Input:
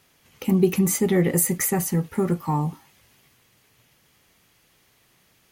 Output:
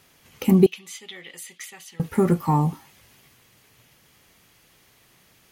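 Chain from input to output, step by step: 0.66–2 band-pass 3300 Hz, Q 3.7; gain +3.5 dB

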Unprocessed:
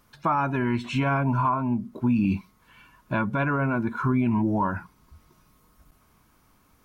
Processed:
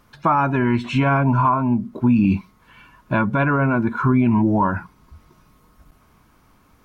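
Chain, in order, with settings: high shelf 5000 Hz -7.5 dB; gain +6.5 dB

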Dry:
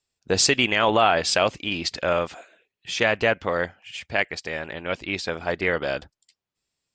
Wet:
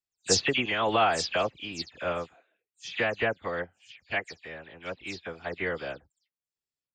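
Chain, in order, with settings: spectral delay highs early, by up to 0.121 s; upward expander 1.5:1, over -41 dBFS; gain -3.5 dB

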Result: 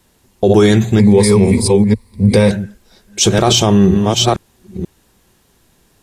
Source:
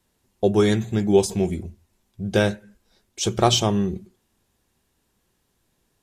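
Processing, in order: reverse delay 0.485 s, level -7 dB; 0.99–2.51 ripple EQ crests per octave 0.93, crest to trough 14 dB; maximiser +15 dB; gain -1 dB

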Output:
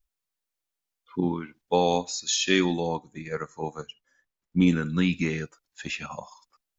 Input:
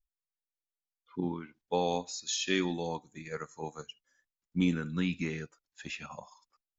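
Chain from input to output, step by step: 2.8–4.67 high shelf 3400 Hz -9 dB; gain +7.5 dB

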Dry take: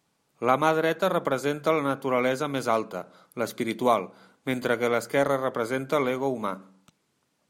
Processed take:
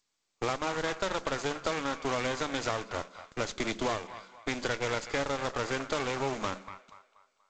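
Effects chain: HPF 170 Hz 24 dB/oct; gate with hold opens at -49 dBFS; tilt +1.5 dB/oct; compressor 6:1, threshold -29 dBFS, peak gain reduction 12.5 dB; modulation noise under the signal 10 dB; on a send: band-limited delay 0.24 s, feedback 38%, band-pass 1500 Hz, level -10 dB; on the sum: added harmonics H 8 -15 dB, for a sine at -17.5 dBFS; G.722 64 kbps 16000 Hz

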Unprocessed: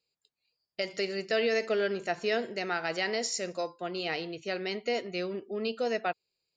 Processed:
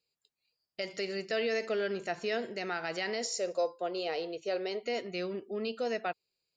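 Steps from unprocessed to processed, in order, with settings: in parallel at 0 dB: limiter -25.5 dBFS, peak gain reduction 8 dB; 3.25–4.83 on the sum: graphic EQ 125/250/500/2000 Hz -10/-7/+9/-5 dB; gain -7.5 dB

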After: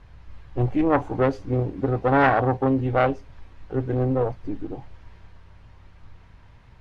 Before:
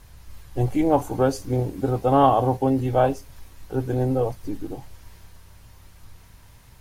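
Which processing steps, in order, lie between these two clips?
self-modulated delay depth 0.31 ms; LPF 2700 Hz 12 dB/oct

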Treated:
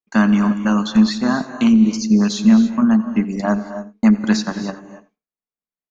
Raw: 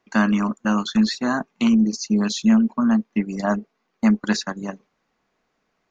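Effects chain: expander -42 dBFS; low shelf 340 Hz +4.5 dB; on a send: echo 87 ms -19 dB; on the sum: non-linear reverb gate 0.31 s rising, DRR 10 dB; gain +1 dB

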